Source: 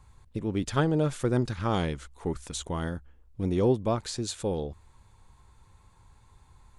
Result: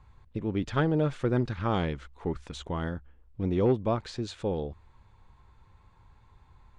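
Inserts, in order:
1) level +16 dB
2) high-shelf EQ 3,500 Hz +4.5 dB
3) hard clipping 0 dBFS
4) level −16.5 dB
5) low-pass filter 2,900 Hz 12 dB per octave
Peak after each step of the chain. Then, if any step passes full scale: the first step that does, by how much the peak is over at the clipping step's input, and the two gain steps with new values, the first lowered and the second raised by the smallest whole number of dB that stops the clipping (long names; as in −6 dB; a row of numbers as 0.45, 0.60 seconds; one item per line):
+4.0, +4.0, 0.0, −16.5, −16.5 dBFS
step 1, 4.0 dB
step 1 +12 dB, step 4 −12.5 dB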